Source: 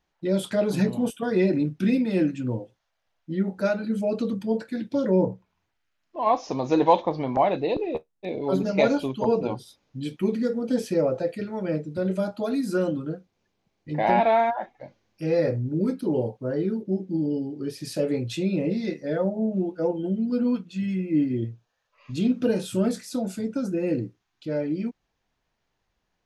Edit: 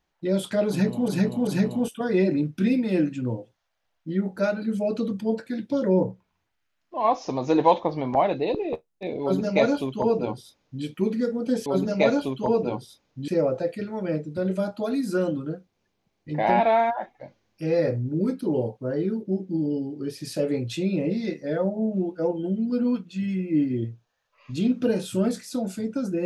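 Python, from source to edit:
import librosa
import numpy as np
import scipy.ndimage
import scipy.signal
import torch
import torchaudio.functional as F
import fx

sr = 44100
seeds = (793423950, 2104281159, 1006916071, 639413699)

y = fx.edit(x, sr, fx.repeat(start_s=0.69, length_s=0.39, count=3),
    fx.duplicate(start_s=8.44, length_s=1.62, to_s=10.88), tone=tone)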